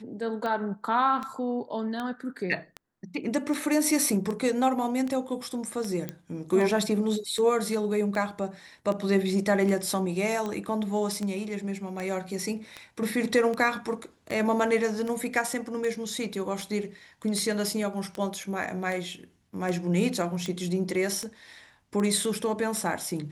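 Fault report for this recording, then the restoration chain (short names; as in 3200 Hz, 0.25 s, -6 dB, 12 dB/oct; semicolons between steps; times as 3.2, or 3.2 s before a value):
tick 78 rpm -20 dBFS
6.09 pop -18 dBFS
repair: de-click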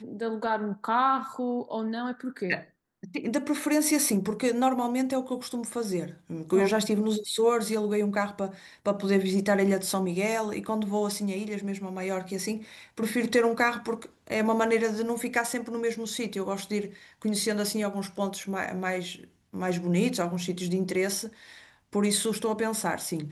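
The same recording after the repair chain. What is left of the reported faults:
none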